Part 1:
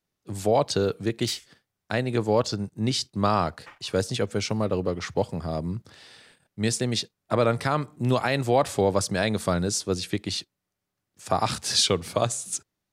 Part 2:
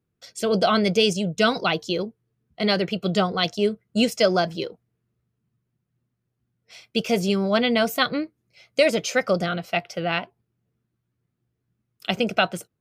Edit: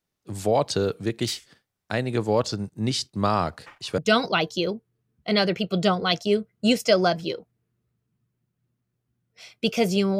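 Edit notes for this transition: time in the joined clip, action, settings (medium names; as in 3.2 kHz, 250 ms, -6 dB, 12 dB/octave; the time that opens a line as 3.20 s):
part 1
3.98 s: go over to part 2 from 1.30 s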